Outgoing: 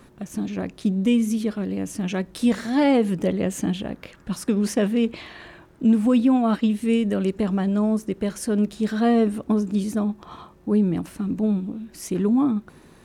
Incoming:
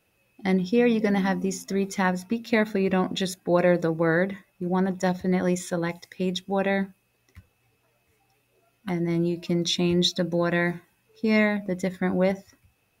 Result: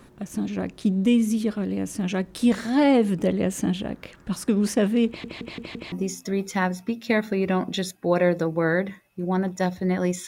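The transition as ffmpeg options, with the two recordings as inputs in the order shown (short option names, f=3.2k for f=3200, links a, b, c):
-filter_complex "[0:a]apad=whole_dur=10.27,atrim=end=10.27,asplit=5[a][b][c][d][e];[a]atrim=end=5.242[f];[b]atrim=start=5.068:end=5.242[g];[c]atrim=start=5.068:end=5.242[h];[d]atrim=start=5.068:end=5.242[i];[e]atrim=start=5.068:end=5.242[j];[1:a]atrim=start=1.348:end=5.7[k];[f][g]acrossfade=d=0.004:c1=hsin:c2=hsin[l];[l][h]acrossfade=d=0.004:c1=hsin:c2=hsin[m];[m][i]acrossfade=d=0.004:c1=hsin:c2=hsin[n];[n][j]acrossfade=d=0.004:c1=hsin:c2=hsin[o];[o][k]acrossfade=d=0.004:c1=hsin:c2=hsin"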